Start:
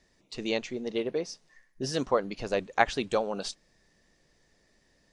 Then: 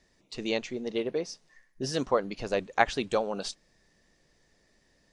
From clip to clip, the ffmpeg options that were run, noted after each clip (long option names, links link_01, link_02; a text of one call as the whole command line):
ffmpeg -i in.wav -af anull out.wav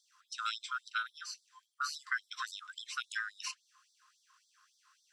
ffmpeg -i in.wav -filter_complex "[0:a]afftfilt=real='real(if(lt(b,960),b+48*(1-2*mod(floor(b/48),2)),b),0)':imag='imag(if(lt(b,960),b+48*(1-2*mod(floor(b/48),2)),b),0)':win_size=2048:overlap=0.75,acrossover=split=250|4100[link_01][link_02][link_03];[link_01]acompressor=threshold=-54dB:ratio=4[link_04];[link_02]acompressor=threshold=-34dB:ratio=4[link_05];[link_03]acompressor=threshold=-45dB:ratio=4[link_06];[link_04][link_05][link_06]amix=inputs=3:normalize=0,afftfilt=real='re*gte(b*sr/1024,880*pow(3400/880,0.5+0.5*sin(2*PI*3.6*pts/sr)))':imag='im*gte(b*sr/1024,880*pow(3400/880,0.5+0.5*sin(2*PI*3.6*pts/sr)))':win_size=1024:overlap=0.75,volume=1dB" out.wav